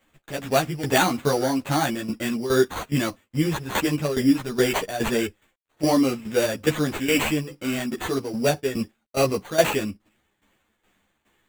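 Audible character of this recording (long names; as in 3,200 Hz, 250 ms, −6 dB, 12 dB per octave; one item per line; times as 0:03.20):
a quantiser's noise floor 12 bits, dither none
tremolo saw down 2.4 Hz, depth 75%
aliases and images of a low sample rate 5,200 Hz, jitter 0%
a shimmering, thickened sound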